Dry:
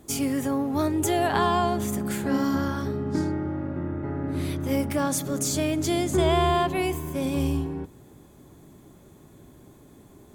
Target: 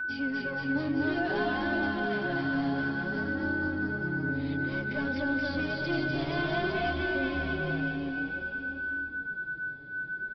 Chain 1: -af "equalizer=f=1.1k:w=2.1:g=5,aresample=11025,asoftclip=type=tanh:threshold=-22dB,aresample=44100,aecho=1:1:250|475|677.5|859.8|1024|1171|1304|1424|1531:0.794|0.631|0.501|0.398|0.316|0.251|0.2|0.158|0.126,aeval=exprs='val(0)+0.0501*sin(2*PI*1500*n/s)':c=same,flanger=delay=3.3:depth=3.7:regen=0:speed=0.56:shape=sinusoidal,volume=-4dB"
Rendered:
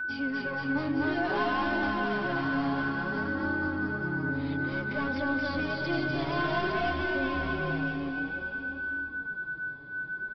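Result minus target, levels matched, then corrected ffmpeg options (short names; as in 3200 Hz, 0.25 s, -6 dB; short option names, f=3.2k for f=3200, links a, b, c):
1000 Hz band +3.5 dB
-af "equalizer=f=1.1k:w=2.1:g=-7,aresample=11025,asoftclip=type=tanh:threshold=-22dB,aresample=44100,aecho=1:1:250|475|677.5|859.8|1024|1171|1304|1424|1531:0.794|0.631|0.501|0.398|0.316|0.251|0.2|0.158|0.126,aeval=exprs='val(0)+0.0501*sin(2*PI*1500*n/s)':c=same,flanger=delay=3.3:depth=3.7:regen=0:speed=0.56:shape=sinusoidal,volume=-4dB"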